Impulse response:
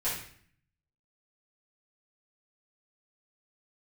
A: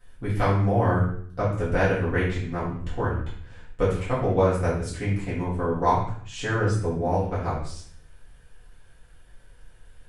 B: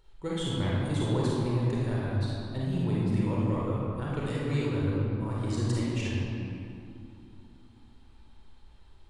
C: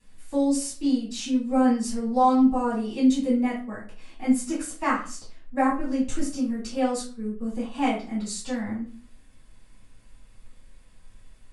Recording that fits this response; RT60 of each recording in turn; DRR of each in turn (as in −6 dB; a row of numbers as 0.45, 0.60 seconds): A; 0.55, 2.6, 0.40 seconds; −11.0, −6.0, −10.0 decibels